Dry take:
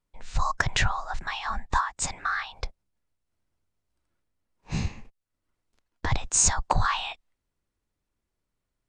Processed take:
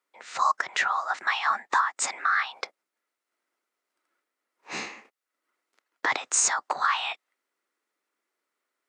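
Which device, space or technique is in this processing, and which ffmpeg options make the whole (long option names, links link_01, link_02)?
laptop speaker: -af "highpass=frequency=320:width=0.5412,highpass=frequency=320:width=1.3066,equalizer=frequency=1300:width_type=o:width=0.41:gain=7,equalizer=frequency=2000:width_type=o:width=0.48:gain=6.5,alimiter=limit=-15dB:level=0:latency=1:release=219,volume=2.5dB"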